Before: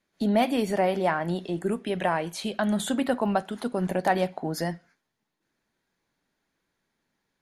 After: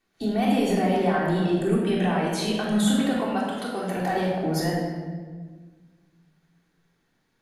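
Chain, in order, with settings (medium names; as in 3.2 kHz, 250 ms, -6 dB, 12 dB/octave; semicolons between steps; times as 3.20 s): 3.12–3.97 s: high-pass 850 Hz 6 dB/octave; peak limiter -21.5 dBFS, peak gain reduction 11 dB; simulated room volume 1500 m³, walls mixed, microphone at 3.5 m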